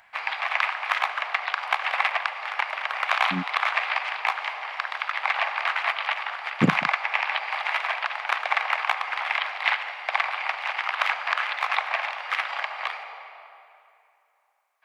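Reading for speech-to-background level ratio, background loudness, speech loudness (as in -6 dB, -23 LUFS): -2.5 dB, -26.0 LUFS, -28.5 LUFS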